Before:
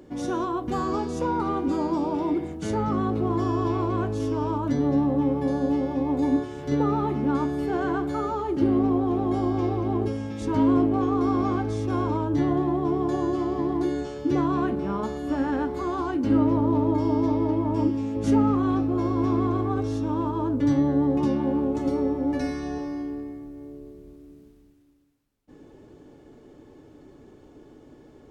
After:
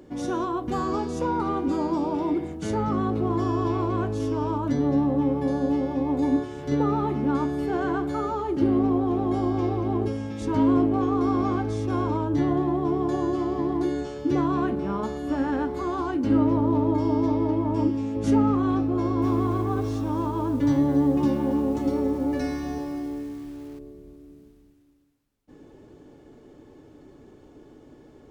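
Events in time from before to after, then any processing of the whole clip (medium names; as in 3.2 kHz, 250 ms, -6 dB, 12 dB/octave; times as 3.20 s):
18.94–23.79 s: bit-crushed delay 278 ms, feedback 35%, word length 7-bit, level -13 dB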